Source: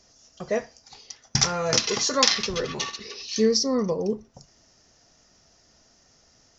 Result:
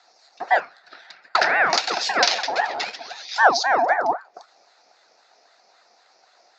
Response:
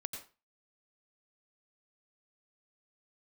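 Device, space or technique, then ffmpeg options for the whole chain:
voice changer toy: -filter_complex "[0:a]aeval=exprs='val(0)*sin(2*PI*910*n/s+910*0.5/3.8*sin(2*PI*3.8*n/s))':c=same,highpass=540,equalizer=f=730:t=q:w=4:g=9,equalizer=f=1.1k:t=q:w=4:g=-7,equalizer=f=3.1k:t=q:w=4:g=-9,lowpass=f=4.7k:w=0.5412,lowpass=f=4.7k:w=1.3066,asettb=1/sr,asplit=3[a][b][c];[a]atrim=end=0.604[d];[b]atrim=start=0.6:end=1.7,asetpts=PTS-STARTPTS,afade=t=in:d=0.004:c=qsin,afade=t=out:st=1.096:d=0.004:c=qsin,equalizer=f=160:t=o:w=0.67:g=9,equalizer=f=1.6k:t=o:w=0.67:g=10,equalizer=f=6.3k:t=o:w=0.67:g=-12[e];[c]atrim=start=1.696[f];[d][e]acrossfade=d=0.004:c1=hsin:c2=qsin[g];[g][f]acrossfade=d=0.004:c1=qsin:c2=hsin,volume=8dB"

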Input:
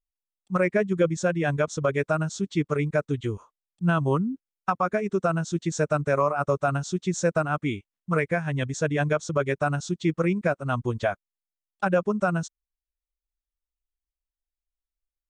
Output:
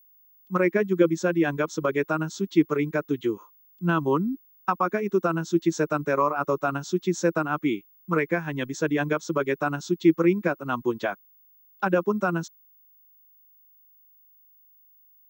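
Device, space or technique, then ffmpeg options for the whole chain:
old television with a line whistle: -af "highpass=f=170:w=0.5412,highpass=f=170:w=1.3066,equalizer=f=330:t=q:w=4:g=9,equalizer=f=640:t=q:w=4:g=-6,equalizer=f=990:t=q:w=4:g=4,lowpass=f=6.8k:w=0.5412,lowpass=f=6.8k:w=1.3066,aeval=exprs='val(0)+0.00178*sin(2*PI*15625*n/s)':c=same"

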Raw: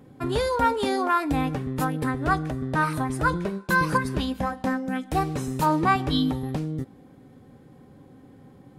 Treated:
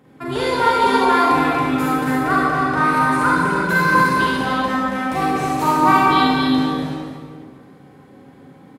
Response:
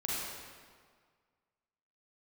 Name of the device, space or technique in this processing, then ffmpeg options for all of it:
stadium PA: -filter_complex "[0:a]highpass=f=180:p=1,equalizer=f=1.8k:t=o:w=2.4:g=5,aecho=1:1:242|277:0.282|0.562[a];[1:a]atrim=start_sample=2205[b];[a][b]afir=irnorm=-1:irlink=0"

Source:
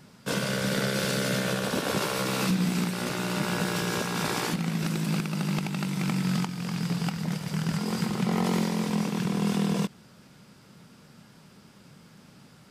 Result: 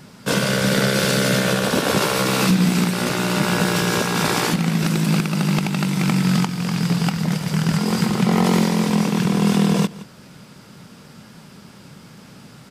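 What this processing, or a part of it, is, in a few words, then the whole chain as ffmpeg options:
ducked delay: -filter_complex "[0:a]asplit=3[a][b][c];[b]adelay=168,volume=-7dB[d];[c]apad=whole_len=567853[e];[d][e]sidechaincompress=threshold=-43dB:ratio=5:attack=16:release=297[f];[a][f]amix=inputs=2:normalize=0,volume=9dB"

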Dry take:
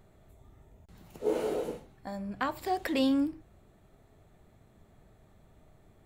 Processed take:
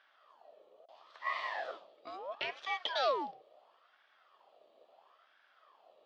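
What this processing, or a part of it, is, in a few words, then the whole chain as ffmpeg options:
voice changer toy: -af "aeval=exprs='val(0)*sin(2*PI*1000*n/s+1000*0.55/0.74*sin(2*PI*0.74*n/s))':c=same,highpass=580,equalizer=f=620:t=q:w=4:g=6,equalizer=f=910:t=q:w=4:g=-6,equalizer=f=1.5k:t=q:w=4:g=-9,equalizer=f=2.1k:t=q:w=4:g=-6,equalizer=f=3.3k:t=q:w=4:g=8,equalizer=f=4.6k:t=q:w=4:g=4,lowpass=f=4.7k:w=0.5412,lowpass=f=4.7k:w=1.3066"

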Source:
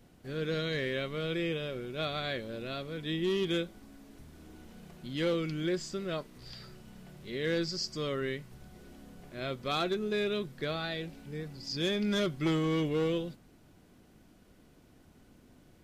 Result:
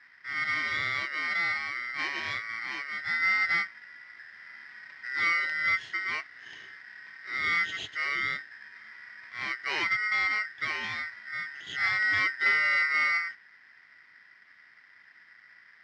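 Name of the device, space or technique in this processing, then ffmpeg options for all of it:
ring modulator pedal into a guitar cabinet: -af "aeval=exprs='val(0)*sgn(sin(2*PI*1700*n/s))':c=same,highpass=100,equalizer=f=100:t=q:w=4:g=4,equalizer=f=230:t=q:w=4:g=-5,equalizer=f=510:t=q:w=4:g=-6,equalizer=f=1.4k:t=q:w=4:g=-3,equalizer=f=2k:t=q:w=4:g=9,lowpass=f=4.5k:w=0.5412,lowpass=f=4.5k:w=1.3066"

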